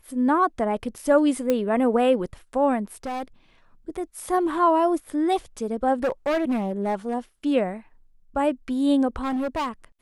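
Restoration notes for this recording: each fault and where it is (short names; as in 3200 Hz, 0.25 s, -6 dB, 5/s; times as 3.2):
1.5 pop -10 dBFS
3.03–3.23 clipped -26.5 dBFS
6.03–7.15 clipped -19.5 dBFS
9.22–9.69 clipped -23 dBFS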